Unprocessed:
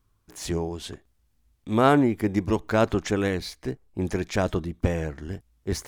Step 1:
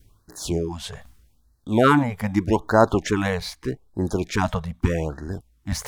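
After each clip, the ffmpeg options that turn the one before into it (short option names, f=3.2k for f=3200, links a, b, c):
-af "adynamicequalizer=threshold=0.0126:dfrequency=920:dqfactor=1.6:tfrequency=920:tqfactor=1.6:attack=5:release=100:ratio=0.375:range=3.5:mode=boostabove:tftype=bell,areverse,acompressor=mode=upward:threshold=-33dB:ratio=2.5,areverse,afftfilt=real='re*(1-between(b*sr/1024,290*pow(2800/290,0.5+0.5*sin(2*PI*0.81*pts/sr))/1.41,290*pow(2800/290,0.5+0.5*sin(2*PI*0.81*pts/sr))*1.41))':imag='im*(1-between(b*sr/1024,290*pow(2800/290,0.5+0.5*sin(2*PI*0.81*pts/sr))/1.41,290*pow(2800/290,0.5+0.5*sin(2*PI*0.81*pts/sr))*1.41))':win_size=1024:overlap=0.75,volume=3dB"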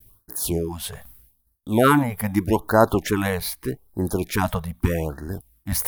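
-af "agate=range=-33dB:threshold=-52dB:ratio=3:detection=peak,aexciter=amount=6.8:drive=6.9:freq=9.7k"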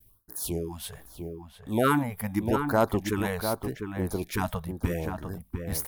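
-filter_complex "[0:a]volume=4.5dB,asoftclip=hard,volume=-4.5dB,asplit=2[a][b];[b]adelay=699.7,volume=-6dB,highshelf=f=4k:g=-15.7[c];[a][c]amix=inputs=2:normalize=0,volume=-7dB"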